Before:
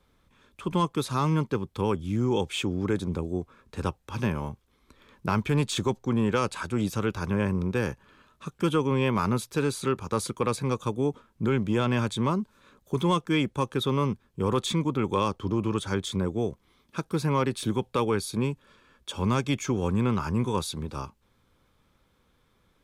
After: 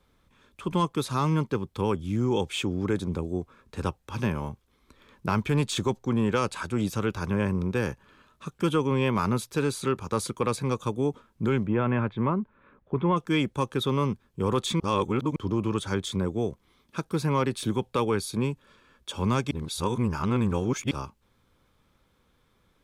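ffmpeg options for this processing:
ffmpeg -i in.wav -filter_complex "[0:a]asplit=3[link_01][link_02][link_03];[link_01]afade=type=out:start_time=11.65:duration=0.02[link_04];[link_02]lowpass=frequency=2300:width=0.5412,lowpass=frequency=2300:width=1.3066,afade=type=in:start_time=11.65:duration=0.02,afade=type=out:start_time=13.16:duration=0.02[link_05];[link_03]afade=type=in:start_time=13.16:duration=0.02[link_06];[link_04][link_05][link_06]amix=inputs=3:normalize=0,asplit=5[link_07][link_08][link_09][link_10][link_11];[link_07]atrim=end=14.802[link_12];[link_08]atrim=start=14.798:end=15.362,asetpts=PTS-STARTPTS,areverse[link_13];[link_09]atrim=start=15.358:end=19.512[link_14];[link_10]atrim=start=19.508:end=20.912,asetpts=PTS-STARTPTS,areverse[link_15];[link_11]atrim=start=20.908[link_16];[link_12][link_13]acrossfade=duration=0.004:curve1=hsin:curve2=hsin[link_17];[link_17][link_14]acrossfade=duration=0.004:curve1=hsin:curve2=hsin[link_18];[link_18][link_15]acrossfade=duration=0.004:curve1=hsin:curve2=hsin[link_19];[link_19][link_16]acrossfade=duration=0.004:curve1=hsin:curve2=hsin" out.wav

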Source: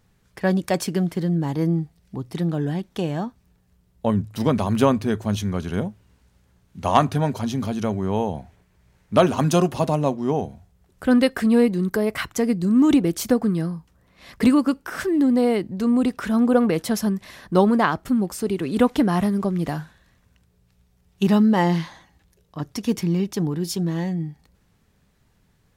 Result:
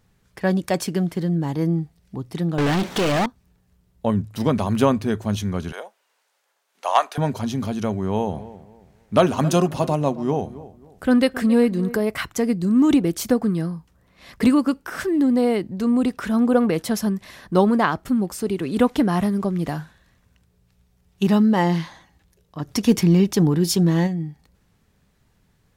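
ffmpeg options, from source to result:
ffmpeg -i in.wav -filter_complex "[0:a]asettb=1/sr,asplit=3[link_01][link_02][link_03];[link_01]atrim=end=2.584[link_04];[link_02]atrim=start=2.58:end=3.26,asetpts=PTS-STARTPTS,afade=type=in:duration=0.004:curve=qsin,afade=type=out:start_time=0.676:duration=0.004:curve=qsin,asplit=2[link_05][link_06];[link_06]highpass=frequency=720:poles=1,volume=41dB,asoftclip=type=tanh:threshold=-13.5dB[link_07];[link_05][link_07]amix=inputs=2:normalize=0,lowpass=frequency=3400:poles=1,volume=-6dB[link_08];[link_03]atrim=start=3.256[link_09];[link_04][link_08]acrossfade=duration=0.004:curve1=hsin:curve2=qsin[link_10];[link_10][link_09]acrossfade=duration=0.004:curve1=qsin:curve2=hsin,asettb=1/sr,asplit=3[link_11][link_12][link_13];[link_11]atrim=end=5.724[link_14];[link_12]atrim=start=5.72:end=7.18,asetpts=PTS-STARTPTS,afade=type=in:duration=0.004:curve=qsin,afade=type=out:start_time=1.456:duration=0.004:curve=qsin,highpass=frequency=560:width=0.5412,highpass=frequency=560:width=1.3066[link_15];[link_13]atrim=start=7.176[link_16];[link_14][link_15]acrossfade=duration=0.004:curve1=hsin:curve2=qsin[link_17];[link_17][link_16]acrossfade=duration=0.004:curve1=qsin:curve2=hsin,asettb=1/sr,asplit=3[link_18][link_19][link_20];[link_18]atrim=end=7.884[link_21];[link_19]atrim=start=7.88:end=12,asetpts=PTS-STARTPTS,afade=type=in:duration=0.004:curve=qsin,afade=type=out:start_time=4.116:duration=0.004:curve=qsin,asplit=2[link_22][link_23];[link_23]adelay=269,lowpass=frequency=1800:poles=1,volume=-16.5dB,asplit=2[link_24][link_25];[link_25]adelay=269,lowpass=frequency=1800:poles=1,volume=0.3,asplit=2[link_26][link_27];[link_27]adelay=269,lowpass=frequency=1800:poles=1,volume=0.3[link_28];[link_22][link_24][link_26][link_28]amix=inputs=4:normalize=0,atrim=end_sample=181692[link_29];[link_20]atrim=start=11.996[link_30];[link_21][link_29]acrossfade=duration=0.004:curve1=hsin:curve2=qsin[link_31];[link_31][link_30]acrossfade=duration=0.004:curve1=qsin:curve2=hsin,asplit=3[link_32][link_33][link_34];[link_32]afade=type=out:start_time=22.67:duration=0.02[link_35];[link_33]acontrast=71,afade=type=in:start_time=22.67:duration=0.02,afade=type=out:start_time=24.06:duration=0.02[link_36];[link_34]afade=type=in:start_time=24.06:duration=0.02[link_37];[link_35][link_36][link_37]amix=inputs=3:normalize=0" out.wav

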